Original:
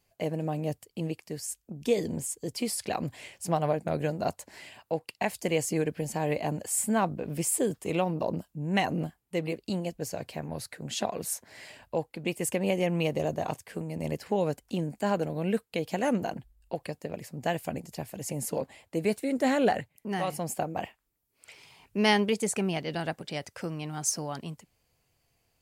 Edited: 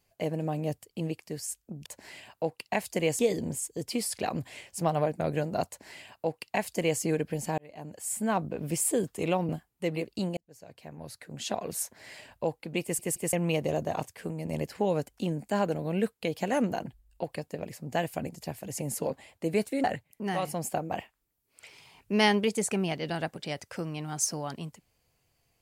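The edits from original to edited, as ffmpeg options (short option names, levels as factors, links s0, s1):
-filter_complex "[0:a]asplit=10[s0][s1][s2][s3][s4][s5][s6][s7][s8][s9];[s0]atrim=end=1.862[s10];[s1]atrim=start=4.348:end=5.682[s11];[s2]atrim=start=1.858:end=6.25,asetpts=PTS-STARTPTS,afade=t=out:st=4.388:d=0.004:c=hsin[s12];[s3]atrim=start=6.25:end=8.162,asetpts=PTS-STARTPTS,afade=t=in:d=0.92[s13];[s4]atrim=start=8.998:end=9.88,asetpts=PTS-STARTPTS,afade=t=out:st=0.878:d=0.004:c=hsin[s14];[s5]atrim=start=9.88:end=12.502,asetpts=PTS-STARTPTS,afade=t=in:d=1.42[s15];[s6]atrim=start=12.328:end=12.502[s16];[s7]atrim=start=12.328:end=12.502[s17];[s8]atrim=start=12.838:end=19.352[s18];[s9]atrim=start=19.688[s19];[s10][s11]acrossfade=d=0.004:c1=hsin:c2=hsin[s20];[s12][s13]concat=n=2:v=0:a=1[s21];[s20][s21]acrossfade=d=0.004:c1=hsin:c2=hsin[s22];[s14][s15]concat=n=2:v=0:a=1[s23];[s22][s23]acrossfade=d=0.004:c1=hsin:c2=hsin[s24];[s24][s16]acrossfade=d=0.004:c1=hsin:c2=hsin[s25];[s25][s17]acrossfade=d=0.004:c1=hsin:c2=hsin[s26];[s26][s18]acrossfade=d=0.004:c1=hsin:c2=hsin[s27];[s27][s19]acrossfade=d=0.004:c1=hsin:c2=hsin"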